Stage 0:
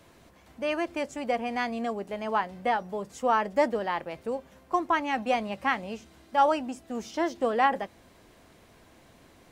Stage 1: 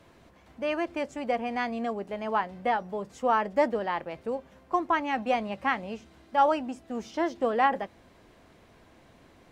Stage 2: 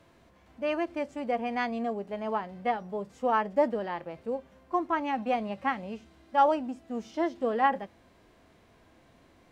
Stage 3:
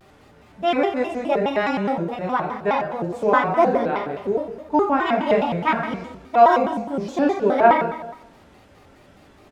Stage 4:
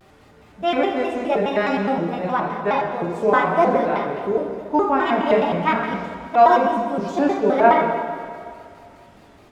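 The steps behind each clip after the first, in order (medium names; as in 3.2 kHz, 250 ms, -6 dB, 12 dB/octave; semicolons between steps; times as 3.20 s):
treble shelf 6 kHz -10 dB
harmonic-percussive split percussive -10 dB
doubling 40 ms -11 dB; plate-style reverb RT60 0.92 s, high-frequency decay 0.8×, DRR -0.5 dB; vibrato with a chosen wave square 4.8 Hz, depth 250 cents; trim +6 dB
plate-style reverb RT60 2.4 s, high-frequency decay 0.85×, DRR 6 dB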